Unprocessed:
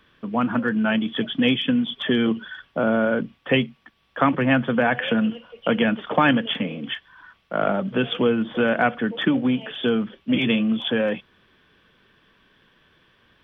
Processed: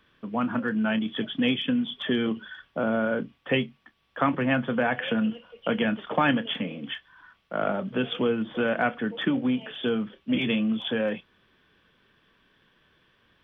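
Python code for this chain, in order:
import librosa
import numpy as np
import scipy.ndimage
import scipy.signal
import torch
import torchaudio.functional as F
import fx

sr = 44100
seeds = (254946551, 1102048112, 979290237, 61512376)

y = fx.doubler(x, sr, ms=28.0, db=-14.0)
y = F.gain(torch.from_numpy(y), -5.0).numpy()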